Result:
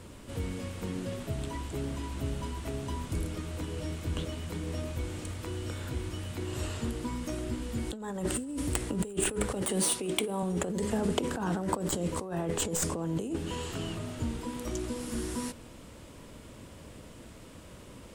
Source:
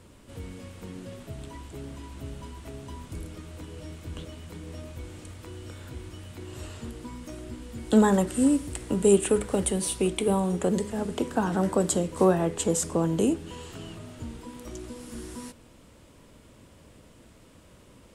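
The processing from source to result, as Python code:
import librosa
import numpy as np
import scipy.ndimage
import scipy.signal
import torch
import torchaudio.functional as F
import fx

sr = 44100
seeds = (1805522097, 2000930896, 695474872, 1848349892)

y = fx.tracing_dist(x, sr, depth_ms=0.028)
y = fx.highpass(y, sr, hz=190.0, slope=12, at=(9.62, 10.43))
y = fx.over_compress(y, sr, threshold_db=-31.0, ratio=-1.0)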